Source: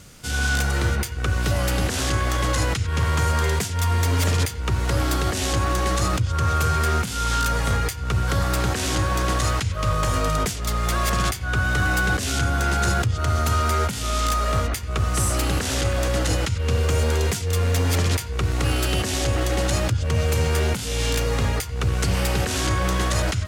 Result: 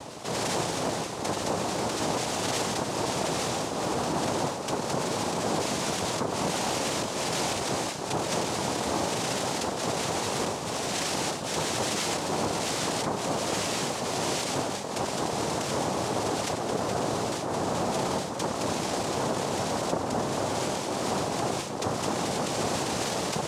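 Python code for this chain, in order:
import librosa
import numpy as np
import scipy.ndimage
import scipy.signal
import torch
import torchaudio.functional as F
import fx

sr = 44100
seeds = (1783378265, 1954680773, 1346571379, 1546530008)

y = scipy.signal.sosfilt(scipy.signal.butter(6, 3900.0, 'lowpass', fs=sr, output='sos'), x)
y = fx.low_shelf(y, sr, hz=180.0, db=6.5)
y = fx.comb_fb(y, sr, f0_hz=270.0, decay_s=0.51, harmonics='all', damping=0.0, mix_pct=90)
y = fx.noise_vocoder(y, sr, seeds[0], bands=2)
y = fx.env_flatten(y, sr, amount_pct=50)
y = y * 10.0 ** (6.0 / 20.0)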